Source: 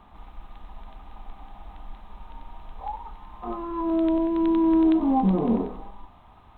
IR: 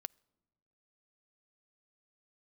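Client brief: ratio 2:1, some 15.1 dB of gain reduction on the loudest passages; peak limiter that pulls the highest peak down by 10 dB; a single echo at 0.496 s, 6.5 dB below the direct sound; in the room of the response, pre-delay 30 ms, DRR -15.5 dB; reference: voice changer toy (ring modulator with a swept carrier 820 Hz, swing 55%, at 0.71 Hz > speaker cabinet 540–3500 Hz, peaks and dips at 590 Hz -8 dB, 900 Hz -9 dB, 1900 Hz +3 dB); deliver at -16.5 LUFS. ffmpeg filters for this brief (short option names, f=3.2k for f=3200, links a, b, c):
-filter_complex "[0:a]acompressor=threshold=-46dB:ratio=2,alimiter=level_in=13dB:limit=-24dB:level=0:latency=1,volume=-13dB,aecho=1:1:496:0.473,asplit=2[a][b];[1:a]atrim=start_sample=2205,adelay=30[c];[b][c]afir=irnorm=-1:irlink=0,volume=19.5dB[d];[a][d]amix=inputs=2:normalize=0,aeval=exprs='val(0)*sin(2*PI*820*n/s+820*0.55/0.71*sin(2*PI*0.71*n/s))':c=same,highpass=540,equalizer=f=590:t=q:w=4:g=-8,equalizer=f=900:t=q:w=4:g=-9,equalizer=f=1.9k:t=q:w=4:g=3,lowpass=f=3.5k:w=0.5412,lowpass=f=3.5k:w=1.3066,volume=18dB"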